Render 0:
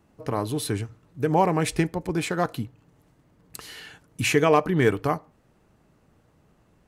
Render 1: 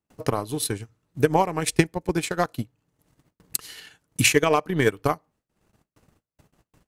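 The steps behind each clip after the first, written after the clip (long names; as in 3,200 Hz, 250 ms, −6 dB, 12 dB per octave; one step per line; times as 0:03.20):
high-shelf EQ 3,000 Hz +8.5 dB
noise gate with hold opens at −50 dBFS
transient designer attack +11 dB, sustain −10 dB
level −4.5 dB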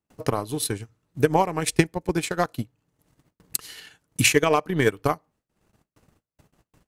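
no processing that can be heard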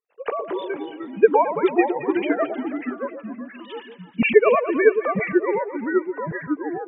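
three sine waves on the formant tracks
delay that swaps between a low-pass and a high-pass 109 ms, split 930 Hz, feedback 65%, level −8.5 dB
delay with pitch and tempo change per echo 171 ms, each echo −3 semitones, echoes 2, each echo −6 dB
level +2.5 dB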